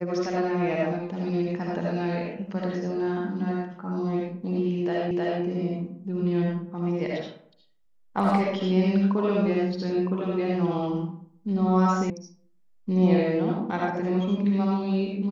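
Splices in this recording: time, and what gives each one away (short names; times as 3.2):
5.11 repeat of the last 0.31 s
12.1 sound cut off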